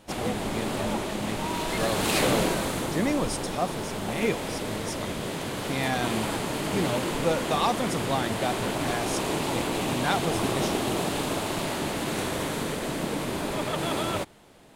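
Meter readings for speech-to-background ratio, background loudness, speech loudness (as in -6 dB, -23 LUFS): -2.5 dB, -29.0 LUFS, -31.5 LUFS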